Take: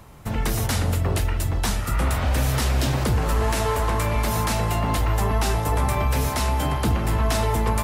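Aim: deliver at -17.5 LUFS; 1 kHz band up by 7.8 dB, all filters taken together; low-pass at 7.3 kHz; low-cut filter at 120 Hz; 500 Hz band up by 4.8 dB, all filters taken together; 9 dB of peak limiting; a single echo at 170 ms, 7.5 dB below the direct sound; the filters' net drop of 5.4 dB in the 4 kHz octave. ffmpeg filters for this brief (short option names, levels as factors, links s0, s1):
-af "highpass=120,lowpass=7300,equalizer=f=500:t=o:g=3.5,equalizer=f=1000:t=o:g=8.5,equalizer=f=4000:t=o:g=-7.5,alimiter=limit=0.158:level=0:latency=1,aecho=1:1:170:0.422,volume=2.24"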